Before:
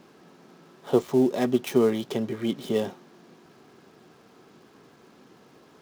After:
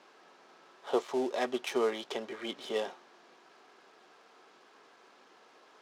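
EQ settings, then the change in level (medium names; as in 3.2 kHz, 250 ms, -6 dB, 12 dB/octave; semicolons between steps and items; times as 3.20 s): high-pass 630 Hz 12 dB/octave; distance through air 58 m; 0.0 dB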